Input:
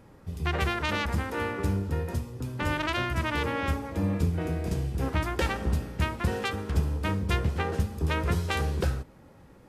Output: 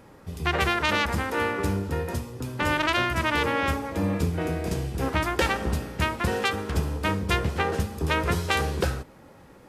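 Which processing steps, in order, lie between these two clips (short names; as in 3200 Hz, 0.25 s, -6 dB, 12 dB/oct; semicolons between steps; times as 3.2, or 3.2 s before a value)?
low shelf 210 Hz -8 dB; gain +6 dB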